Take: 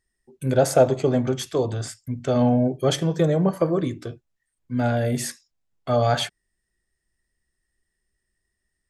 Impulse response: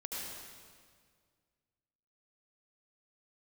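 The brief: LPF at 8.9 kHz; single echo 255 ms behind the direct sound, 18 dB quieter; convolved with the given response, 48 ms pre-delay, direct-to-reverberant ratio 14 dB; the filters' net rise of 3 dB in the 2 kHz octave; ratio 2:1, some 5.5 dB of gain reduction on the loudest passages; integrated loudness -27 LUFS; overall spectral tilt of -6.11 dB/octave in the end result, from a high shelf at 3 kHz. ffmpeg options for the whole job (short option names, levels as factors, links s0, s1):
-filter_complex "[0:a]lowpass=8900,equalizer=f=2000:t=o:g=6.5,highshelf=f=3000:g=-6.5,acompressor=threshold=0.0891:ratio=2,aecho=1:1:255:0.126,asplit=2[s0][s1];[1:a]atrim=start_sample=2205,adelay=48[s2];[s1][s2]afir=irnorm=-1:irlink=0,volume=0.178[s3];[s0][s3]amix=inputs=2:normalize=0,volume=0.841"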